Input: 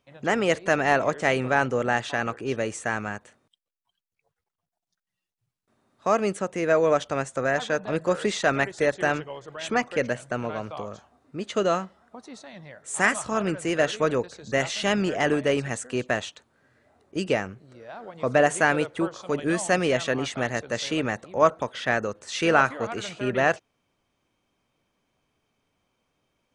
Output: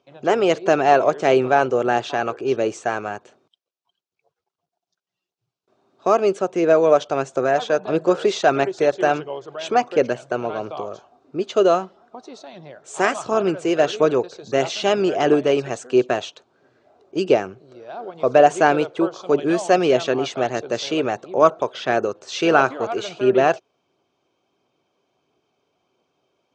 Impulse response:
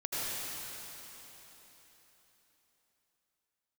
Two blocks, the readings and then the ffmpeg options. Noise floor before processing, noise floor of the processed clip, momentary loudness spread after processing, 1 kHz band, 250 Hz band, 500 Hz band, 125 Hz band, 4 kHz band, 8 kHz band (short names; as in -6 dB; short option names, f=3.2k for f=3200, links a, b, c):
under -85 dBFS, -84 dBFS, 12 LU, +6.5 dB, +5.0 dB, +7.0 dB, -0.5 dB, +3.0 dB, -1.0 dB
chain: -af "aphaser=in_gain=1:out_gain=1:delay=2.1:decay=0.23:speed=1.5:type=triangular,highpass=160,equalizer=f=210:t=q:w=4:g=-5,equalizer=f=380:t=q:w=4:g=9,equalizer=f=710:t=q:w=4:g=5,equalizer=f=1.9k:t=q:w=4:g=-10,lowpass=f=6.4k:w=0.5412,lowpass=f=6.4k:w=1.3066,volume=3.5dB"